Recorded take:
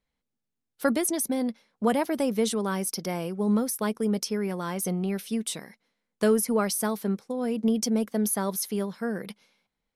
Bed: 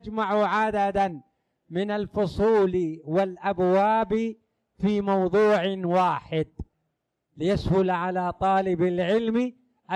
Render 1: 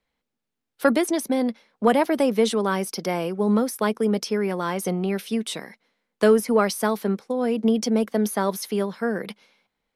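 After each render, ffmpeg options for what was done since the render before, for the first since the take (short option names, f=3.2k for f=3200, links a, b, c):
-filter_complex "[0:a]acrossover=split=250|4500[a][b][c];[b]acontrast=75[d];[c]alimiter=level_in=1dB:limit=-24dB:level=0:latency=1,volume=-1dB[e];[a][d][e]amix=inputs=3:normalize=0"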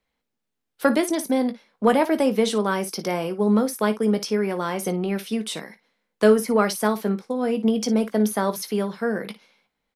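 -af "aecho=1:1:19|56:0.282|0.178"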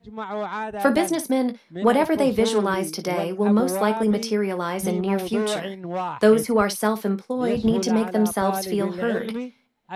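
-filter_complex "[1:a]volume=-6dB[a];[0:a][a]amix=inputs=2:normalize=0"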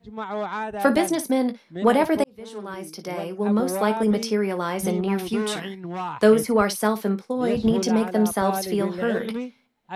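-filter_complex "[0:a]asettb=1/sr,asplit=3[a][b][c];[a]atrim=end=5.084[d];[b]atrim=start=5.08:end=6.15,asetpts=PTS-STARTPTS,afade=t=in:d=0.004:c=qsin,afade=t=out:st=1.066:d=0.004:c=qsin,equalizer=f=580:w=3.6:g=-14[e];[c]atrim=start=6.146[f];[d][e]acrossfade=d=0.004:c1=hsin:c2=qsin[g];[g][f]acrossfade=d=0.004:c1=qsin:c2=hsin,asplit=2[h][i];[h]atrim=end=2.24,asetpts=PTS-STARTPTS,afade=t=out:st=2.236:d=0.004:c=hsin[j];[i]atrim=start=2.24,asetpts=PTS-STARTPTS,afade=t=in:d=1.75[k];[j][k]concat=n=2:v=0:a=1"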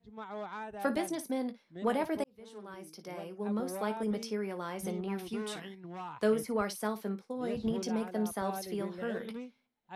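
-af "volume=-12.5dB"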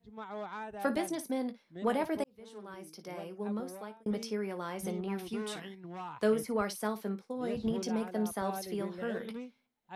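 -filter_complex "[0:a]asplit=2[a][b];[a]atrim=end=4.06,asetpts=PTS-STARTPTS,afade=t=out:st=3.37:d=0.69[c];[b]atrim=start=4.06,asetpts=PTS-STARTPTS,afade=t=in:d=0.004:c=hsin[d];[c][d]concat=n=2:v=0:a=1"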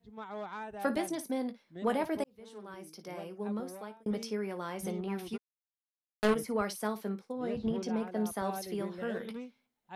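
-filter_complex "[0:a]asplit=3[a][b][c];[a]afade=t=out:st=5.36:d=0.02[d];[b]acrusher=bits=3:mix=0:aa=0.5,afade=t=in:st=5.36:d=0.02,afade=t=out:st=6.34:d=0.02[e];[c]afade=t=in:st=6.34:d=0.02[f];[d][e][f]amix=inputs=3:normalize=0,asettb=1/sr,asplit=3[g][h][i];[g]atrim=end=7.324[j];[h]atrim=start=7.32:end=8.17,asetpts=PTS-STARTPTS,afade=t=in:d=0.004:c=qsin,afade=t=out:st=0.846:d=0.004:c=qsin,lowpass=f=3.5k:p=1[k];[i]atrim=start=8.166[l];[j][k]acrossfade=d=0.004:c1=hsin:c2=qsin[m];[m][l]acrossfade=d=0.004:c1=qsin:c2=hsin"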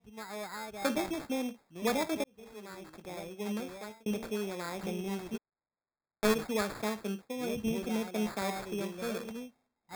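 -af "acrusher=samples=15:mix=1:aa=0.000001"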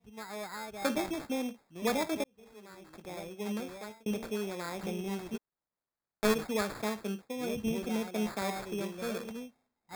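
-filter_complex "[0:a]asplit=3[a][b][c];[a]atrim=end=2.272[d];[b]atrim=start=2.268:end=2.902,asetpts=PTS-STARTPTS,volume=-5dB[e];[c]atrim=start=2.898[f];[d][e]acrossfade=d=0.004:c1=hsin:c2=hsin[g];[g][f]acrossfade=d=0.004:c1=hsin:c2=hsin"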